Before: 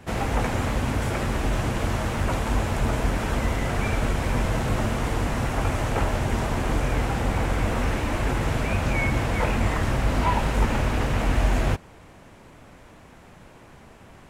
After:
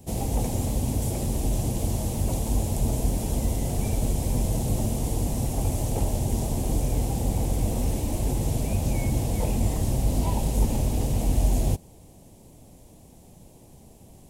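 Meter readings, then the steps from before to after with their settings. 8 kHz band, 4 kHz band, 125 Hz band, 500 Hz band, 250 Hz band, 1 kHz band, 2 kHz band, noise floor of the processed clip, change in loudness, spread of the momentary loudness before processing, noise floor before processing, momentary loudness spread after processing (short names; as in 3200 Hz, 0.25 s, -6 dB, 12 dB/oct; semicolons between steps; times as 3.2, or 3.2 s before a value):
+5.0 dB, -5.5 dB, 0.0 dB, -4.0 dB, -1.0 dB, -9.0 dB, -17.0 dB, -51 dBFS, -1.5 dB, 3 LU, -49 dBFS, 2 LU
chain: EQ curve 180 Hz 0 dB, 810 Hz -6 dB, 1400 Hz -25 dB, 3300 Hz -7 dB, 11000 Hz +10 dB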